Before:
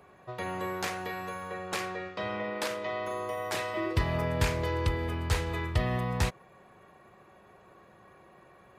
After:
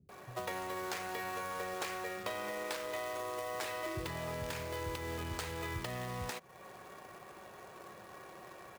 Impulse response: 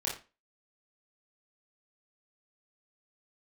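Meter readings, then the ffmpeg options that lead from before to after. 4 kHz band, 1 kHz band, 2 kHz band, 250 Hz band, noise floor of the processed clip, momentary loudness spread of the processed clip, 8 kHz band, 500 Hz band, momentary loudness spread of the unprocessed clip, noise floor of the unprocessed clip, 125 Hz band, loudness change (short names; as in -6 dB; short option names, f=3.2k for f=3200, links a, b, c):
-5.5 dB, -5.0 dB, -5.5 dB, -9.5 dB, -54 dBFS, 13 LU, -3.5 dB, -6.5 dB, 8 LU, -58 dBFS, -13.0 dB, -7.5 dB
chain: -filter_complex "[0:a]lowshelf=f=97:g=-10.5,acompressor=threshold=-41dB:ratio=16,acrusher=bits=2:mode=log:mix=0:aa=0.000001,acrossover=split=210[a][b];[b]adelay=90[c];[a][c]amix=inputs=2:normalize=0,volume=5dB"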